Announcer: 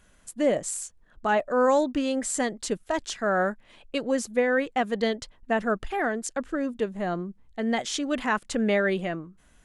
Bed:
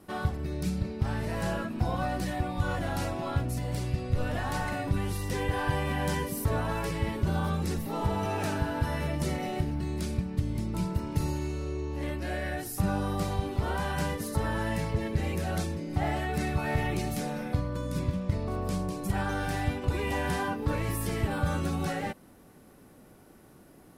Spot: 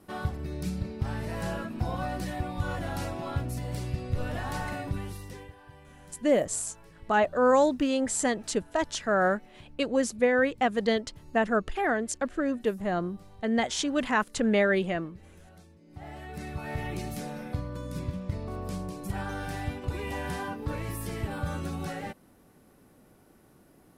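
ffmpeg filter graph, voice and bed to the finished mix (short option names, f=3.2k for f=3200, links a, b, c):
-filter_complex "[0:a]adelay=5850,volume=0dB[a];[1:a]volume=17dB,afade=t=out:st=4.72:d=0.83:silence=0.0891251,afade=t=in:st=15.79:d=1.2:silence=0.112202[b];[a][b]amix=inputs=2:normalize=0"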